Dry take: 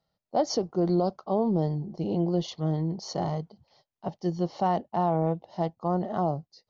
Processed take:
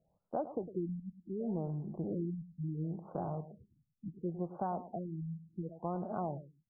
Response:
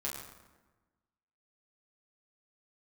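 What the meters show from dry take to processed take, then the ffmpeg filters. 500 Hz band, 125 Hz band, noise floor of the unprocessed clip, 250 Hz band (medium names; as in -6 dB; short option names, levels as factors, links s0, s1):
-12.5 dB, -10.0 dB, under -85 dBFS, -10.5 dB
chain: -af "acompressor=threshold=0.00501:ratio=2.5,aecho=1:1:105|210:0.224|0.047,afftfilt=real='re*lt(b*sr/1024,250*pow(1700/250,0.5+0.5*sin(2*PI*0.7*pts/sr)))':imag='im*lt(b*sr/1024,250*pow(1700/250,0.5+0.5*sin(2*PI*0.7*pts/sr)))':win_size=1024:overlap=0.75,volume=1.68"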